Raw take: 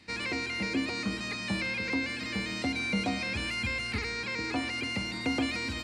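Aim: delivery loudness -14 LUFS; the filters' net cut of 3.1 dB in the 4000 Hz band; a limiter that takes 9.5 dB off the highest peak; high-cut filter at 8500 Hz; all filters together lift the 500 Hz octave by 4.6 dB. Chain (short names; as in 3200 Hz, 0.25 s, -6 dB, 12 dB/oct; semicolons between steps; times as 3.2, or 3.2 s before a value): LPF 8500 Hz; bell 500 Hz +5.5 dB; bell 4000 Hz -4 dB; gain +20.5 dB; limiter -6 dBFS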